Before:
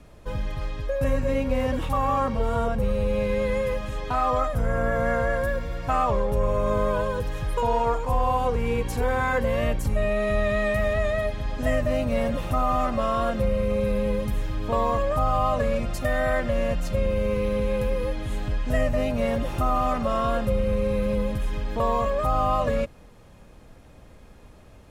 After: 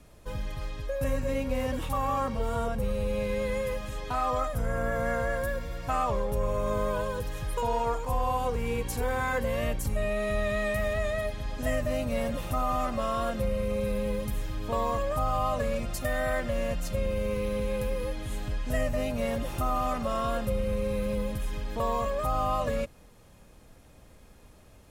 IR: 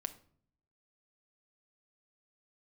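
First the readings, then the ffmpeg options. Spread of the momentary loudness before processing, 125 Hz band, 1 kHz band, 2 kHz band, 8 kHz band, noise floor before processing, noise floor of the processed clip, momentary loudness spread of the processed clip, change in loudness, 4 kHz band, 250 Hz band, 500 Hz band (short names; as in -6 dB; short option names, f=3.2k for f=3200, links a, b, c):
5 LU, -5.5 dB, -5.0 dB, -4.0 dB, +2.0 dB, -49 dBFS, -54 dBFS, 5 LU, -5.0 dB, -2.5 dB, -5.5 dB, -5.5 dB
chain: -af "aemphasis=mode=production:type=cd,volume=-5dB"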